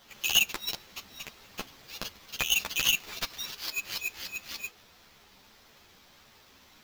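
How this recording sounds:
aliases and images of a low sample rate 9,400 Hz, jitter 0%
a shimmering, thickened sound

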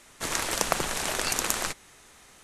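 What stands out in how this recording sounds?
background noise floor −55 dBFS
spectral slope −2.0 dB per octave

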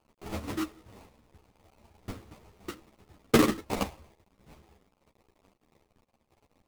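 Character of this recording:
a quantiser's noise floor 10 bits, dither none
phaser sweep stages 4, 0.44 Hz, lowest notch 310–4,000 Hz
aliases and images of a low sample rate 1,600 Hz, jitter 20%
a shimmering, thickened sound

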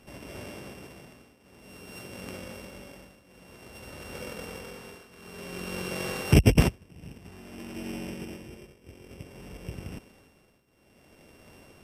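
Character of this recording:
a buzz of ramps at a fixed pitch in blocks of 16 samples
tremolo triangle 0.54 Hz, depth 90%
MP2

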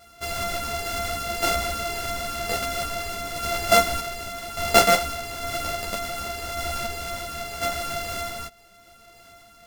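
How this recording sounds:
a buzz of ramps at a fixed pitch in blocks of 64 samples
sample-and-hold tremolo
a shimmering, thickened sound

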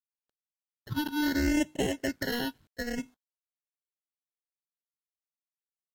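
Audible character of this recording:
aliases and images of a low sample rate 1,200 Hz, jitter 0%
phaser sweep stages 6, 0.7 Hz, lowest notch 580–1,300 Hz
a quantiser's noise floor 12 bits, dither none
AAC

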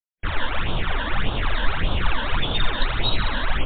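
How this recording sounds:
a quantiser's noise floor 6 bits, dither none
phaser sweep stages 12, 1.7 Hz, lowest notch 120–2,000 Hz
MP3

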